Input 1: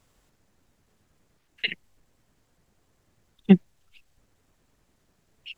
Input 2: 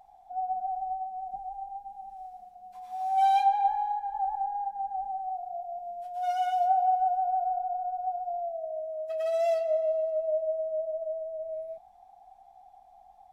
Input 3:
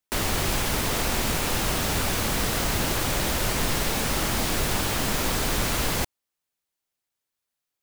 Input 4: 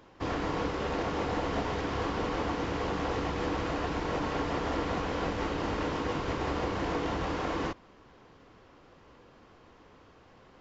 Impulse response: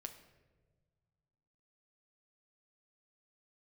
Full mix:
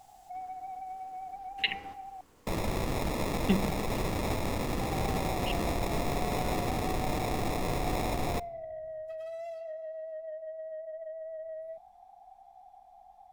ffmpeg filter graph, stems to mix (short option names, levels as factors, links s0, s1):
-filter_complex "[0:a]highshelf=f=3300:g=10.5,bandreject=f=198.1:t=h:w=4,bandreject=f=396.2:t=h:w=4,bandreject=f=594.3:t=h:w=4,bandreject=f=792.4:t=h:w=4,bandreject=f=990.5:t=h:w=4,bandreject=f=1188.6:t=h:w=4,bandreject=f=1386.7:t=h:w=4,bandreject=f=1584.8:t=h:w=4,bandreject=f=1782.9:t=h:w=4,bandreject=f=1981:t=h:w=4,bandreject=f=2179.1:t=h:w=4,bandreject=f=2377.2:t=h:w=4,acompressor=threshold=0.0891:ratio=6,volume=0.596,asplit=3[s0][s1][s2];[s1]volume=0.501[s3];[1:a]acompressor=threshold=0.0141:ratio=12,asoftclip=type=tanh:threshold=0.0211,volume=1,asplit=3[s4][s5][s6];[s4]atrim=end=2.21,asetpts=PTS-STARTPTS,afade=t=out:st=2.206:d=0.004:c=hsin[s7];[s5]atrim=start=2.21:end=4.81,asetpts=PTS-STARTPTS,volume=0[s8];[s6]atrim=start=4.81,asetpts=PTS-STARTPTS,afade=t=in:d=0.004:c=hsin[s9];[s7][s8][s9]concat=n=3:v=0:a=1[s10];[2:a]acrusher=samples=29:mix=1:aa=0.000001,adelay=2350,volume=0.422,asplit=2[s11][s12];[s12]volume=0.316[s13];[3:a]alimiter=level_in=1.5:limit=0.0631:level=0:latency=1:release=344,volume=0.668,volume=0.2,asplit=2[s14][s15];[s15]volume=0.251[s16];[s2]apad=whole_len=467712[s17];[s14][s17]sidechaingate=range=0.0224:threshold=0.00141:ratio=16:detection=peak[s18];[4:a]atrim=start_sample=2205[s19];[s3][s13]amix=inputs=2:normalize=0[s20];[s20][s19]afir=irnorm=-1:irlink=0[s21];[s16]aecho=0:1:140:1[s22];[s0][s10][s11][s18][s21][s22]amix=inputs=6:normalize=0"